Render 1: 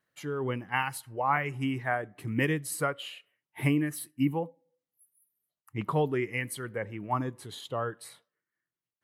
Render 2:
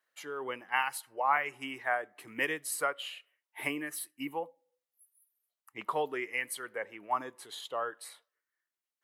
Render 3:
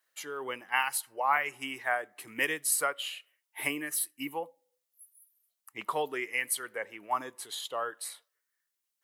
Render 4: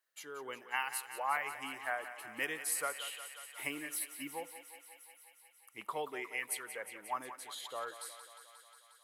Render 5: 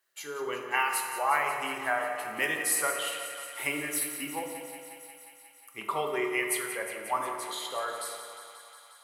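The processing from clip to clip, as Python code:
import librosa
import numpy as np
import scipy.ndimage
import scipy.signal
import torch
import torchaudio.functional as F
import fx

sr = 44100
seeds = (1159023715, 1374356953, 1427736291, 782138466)

y1 = scipy.signal.sosfilt(scipy.signal.butter(2, 560.0, 'highpass', fs=sr, output='sos'), x)
y2 = fx.high_shelf(y1, sr, hz=3600.0, db=9.5)
y3 = fx.echo_thinned(y2, sr, ms=179, feedback_pct=79, hz=400.0, wet_db=-11.5)
y3 = y3 * 10.0 ** (-7.5 / 20.0)
y4 = fx.rev_fdn(y3, sr, rt60_s=1.9, lf_ratio=1.05, hf_ratio=0.45, size_ms=15.0, drr_db=0.5)
y4 = y4 * 10.0 ** (6.5 / 20.0)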